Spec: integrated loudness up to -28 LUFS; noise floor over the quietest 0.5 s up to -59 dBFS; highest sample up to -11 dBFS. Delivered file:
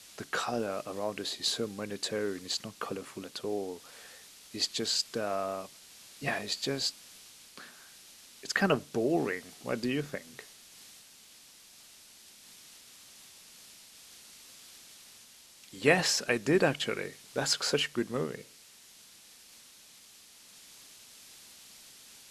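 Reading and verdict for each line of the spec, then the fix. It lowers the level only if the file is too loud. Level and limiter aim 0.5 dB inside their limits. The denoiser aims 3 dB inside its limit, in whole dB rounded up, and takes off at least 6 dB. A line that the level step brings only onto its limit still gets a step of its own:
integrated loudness -31.5 LUFS: pass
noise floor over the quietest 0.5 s -56 dBFS: fail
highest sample -8.5 dBFS: fail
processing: noise reduction 6 dB, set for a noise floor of -56 dBFS; peak limiter -11.5 dBFS

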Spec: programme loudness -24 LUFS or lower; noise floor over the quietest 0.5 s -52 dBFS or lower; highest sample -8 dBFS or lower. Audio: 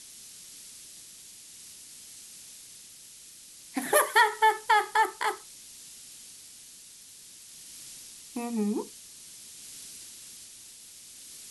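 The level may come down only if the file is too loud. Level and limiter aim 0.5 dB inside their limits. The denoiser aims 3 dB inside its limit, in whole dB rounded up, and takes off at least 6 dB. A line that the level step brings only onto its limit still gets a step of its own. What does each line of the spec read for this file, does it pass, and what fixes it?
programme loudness -26.5 LUFS: pass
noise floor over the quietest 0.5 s -50 dBFS: fail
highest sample -9.0 dBFS: pass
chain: noise reduction 6 dB, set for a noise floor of -50 dBFS

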